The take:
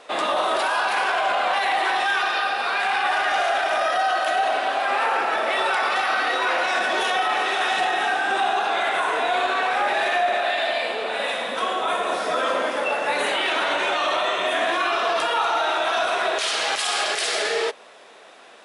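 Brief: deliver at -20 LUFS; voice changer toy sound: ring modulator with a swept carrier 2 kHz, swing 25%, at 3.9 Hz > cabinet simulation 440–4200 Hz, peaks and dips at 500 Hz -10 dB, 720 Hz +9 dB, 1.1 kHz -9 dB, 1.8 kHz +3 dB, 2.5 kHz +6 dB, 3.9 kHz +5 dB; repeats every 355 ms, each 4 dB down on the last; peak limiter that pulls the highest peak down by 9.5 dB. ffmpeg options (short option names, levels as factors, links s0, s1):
-af "alimiter=limit=0.0944:level=0:latency=1,aecho=1:1:355|710|1065|1420|1775|2130|2485|2840|3195:0.631|0.398|0.25|0.158|0.0994|0.0626|0.0394|0.0249|0.0157,aeval=exprs='val(0)*sin(2*PI*2000*n/s+2000*0.25/3.9*sin(2*PI*3.9*n/s))':c=same,highpass=440,equalizer=f=500:t=q:w=4:g=-10,equalizer=f=720:t=q:w=4:g=9,equalizer=f=1100:t=q:w=4:g=-9,equalizer=f=1800:t=q:w=4:g=3,equalizer=f=2500:t=q:w=4:g=6,equalizer=f=3900:t=q:w=4:g=5,lowpass=f=4200:w=0.5412,lowpass=f=4200:w=1.3066,volume=1.88"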